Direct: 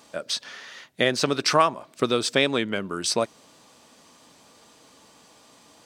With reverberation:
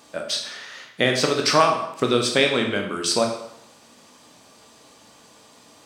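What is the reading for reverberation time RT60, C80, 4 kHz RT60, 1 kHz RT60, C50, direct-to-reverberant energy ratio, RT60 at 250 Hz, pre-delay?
0.75 s, 8.5 dB, 0.70 s, 0.75 s, 6.0 dB, 2.0 dB, 0.75 s, 14 ms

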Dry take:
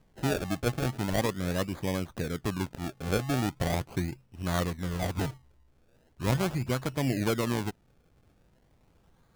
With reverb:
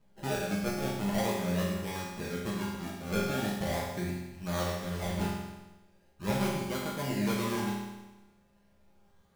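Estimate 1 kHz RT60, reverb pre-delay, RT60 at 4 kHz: 1.1 s, 5 ms, 1.1 s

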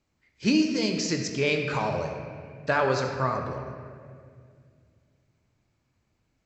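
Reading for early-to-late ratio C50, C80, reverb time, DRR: 4.5 dB, 5.5 dB, 2.2 s, 3.0 dB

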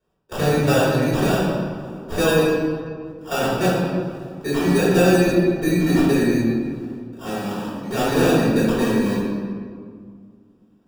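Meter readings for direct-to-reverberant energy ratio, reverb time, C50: −10.5 dB, 2.0 s, −1.5 dB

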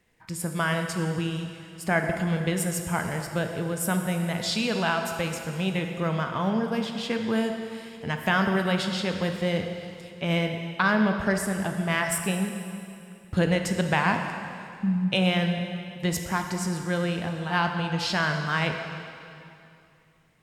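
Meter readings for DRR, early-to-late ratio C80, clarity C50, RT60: 4.5 dB, 6.5 dB, 5.5 dB, 2.6 s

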